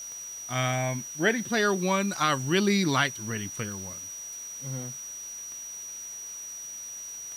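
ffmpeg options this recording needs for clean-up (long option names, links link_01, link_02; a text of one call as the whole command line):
ffmpeg -i in.wav -af "adeclick=threshold=4,bandreject=frequency=5800:width=30,afwtdn=0.0032" out.wav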